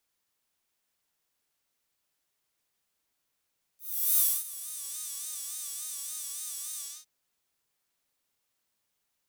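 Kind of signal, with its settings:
subtractive patch with vibrato D5, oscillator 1 saw, oscillator 2 square, interval +12 semitones, detune 9 cents, oscillator 2 level −4 dB, sub −1.5 dB, filter highpass, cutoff 5,600 Hz, Q 1.4, filter envelope 1.5 octaves, filter decay 1.15 s, attack 395 ms, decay 0.25 s, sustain −20 dB, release 0.27 s, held 2.99 s, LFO 3.5 Hz, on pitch 94 cents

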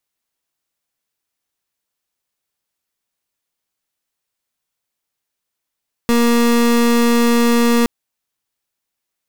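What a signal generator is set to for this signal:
pulse wave 236 Hz, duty 31% −13 dBFS 1.77 s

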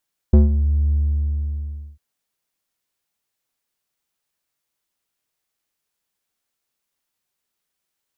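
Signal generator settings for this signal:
subtractive voice square D2 12 dB per octave, low-pass 100 Hz, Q 1, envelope 2 octaves, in 0.32 s, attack 6.4 ms, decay 0.15 s, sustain −9.5 dB, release 1.06 s, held 0.59 s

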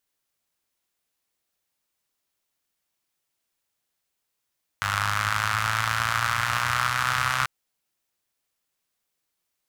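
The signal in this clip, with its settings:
pulse-train model of a four-cylinder engine, changing speed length 2.64 s, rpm 3,000, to 3,900, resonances 100/1,300 Hz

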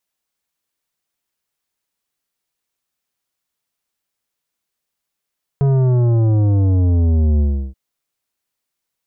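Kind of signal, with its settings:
bass drop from 140 Hz, over 2.13 s, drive 11 dB, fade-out 0.34 s, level −12.5 dB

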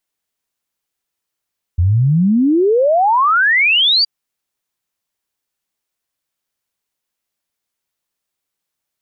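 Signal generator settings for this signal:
exponential sine sweep 82 Hz → 4,800 Hz 2.27 s −9.5 dBFS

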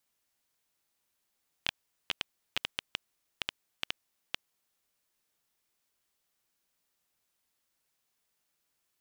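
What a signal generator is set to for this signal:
Geiger counter clicks 4.5 per second −12 dBFS 3.51 s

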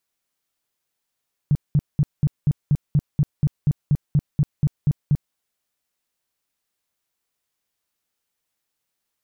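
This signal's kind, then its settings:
tone bursts 146 Hz, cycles 6, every 0.24 s, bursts 16, −13 dBFS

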